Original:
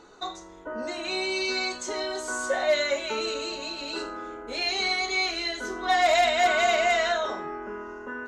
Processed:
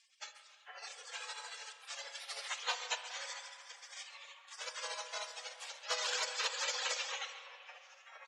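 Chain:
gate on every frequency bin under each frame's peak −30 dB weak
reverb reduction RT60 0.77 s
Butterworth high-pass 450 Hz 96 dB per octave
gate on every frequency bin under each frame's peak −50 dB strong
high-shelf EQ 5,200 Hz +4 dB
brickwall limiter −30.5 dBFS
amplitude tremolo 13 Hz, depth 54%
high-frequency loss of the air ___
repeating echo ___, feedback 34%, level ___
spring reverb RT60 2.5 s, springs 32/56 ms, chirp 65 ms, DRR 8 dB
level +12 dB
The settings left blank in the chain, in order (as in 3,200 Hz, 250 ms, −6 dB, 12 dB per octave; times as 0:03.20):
110 metres, 134 ms, −15.5 dB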